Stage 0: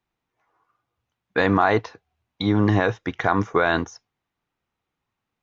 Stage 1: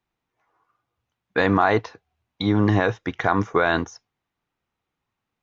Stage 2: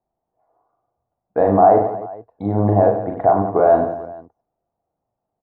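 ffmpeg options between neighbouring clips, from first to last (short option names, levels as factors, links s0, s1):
-af anull
-filter_complex "[0:a]lowpass=f=680:t=q:w=4.9,asplit=2[s0][s1];[s1]aecho=0:1:40|96|174.4|284.2|437.8:0.631|0.398|0.251|0.158|0.1[s2];[s0][s2]amix=inputs=2:normalize=0,volume=0.794"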